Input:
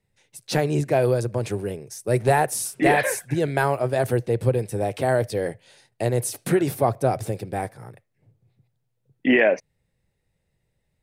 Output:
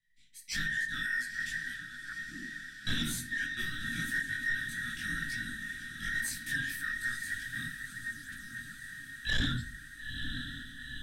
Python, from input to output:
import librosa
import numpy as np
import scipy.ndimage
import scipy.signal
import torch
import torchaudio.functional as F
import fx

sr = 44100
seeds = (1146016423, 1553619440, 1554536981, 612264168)

y = fx.band_invert(x, sr, width_hz=2000)
y = scipy.signal.sosfilt(scipy.signal.ellip(3, 1.0, 40, [250.0, 1700.0], 'bandstop', fs=sr, output='sos'), y)
y = fx.band_shelf(y, sr, hz=1000.0, db=-12.0, octaves=1.7)
y = fx.auto_wah(y, sr, base_hz=330.0, top_hz=3400.0, q=4.3, full_db=-25.5, direction='down', at=(1.8, 2.87))
y = fx.echo_diffused(y, sr, ms=939, feedback_pct=70, wet_db=-10.0)
y = fx.room_shoebox(y, sr, seeds[0], volume_m3=47.0, walls='mixed', distance_m=0.36)
y = fx.chorus_voices(y, sr, voices=6, hz=1.0, base_ms=21, depth_ms=4.4, mix_pct=55)
y = 10.0 ** (-24.0 / 20.0) * np.tanh(y / 10.0 ** (-24.0 / 20.0))
y = fx.high_shelf(y, sr, hz=6700.0, db=-7.5)